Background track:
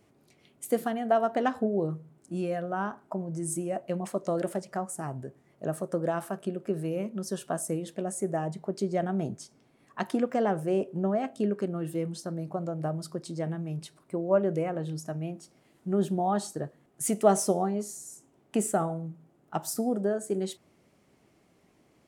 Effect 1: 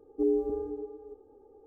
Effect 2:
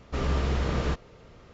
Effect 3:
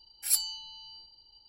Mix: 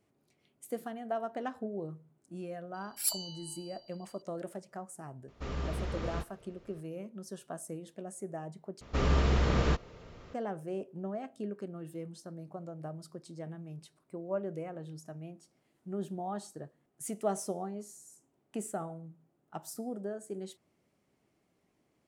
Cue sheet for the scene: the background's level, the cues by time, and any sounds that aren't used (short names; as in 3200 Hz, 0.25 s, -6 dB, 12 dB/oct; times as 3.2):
background track -10.5 dB
2.74 add 3 -6 dB + tone controls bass -5 dB, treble +1 dB
5.28 add 2 -9.5 dB
8.81 replace with 2
not used: 1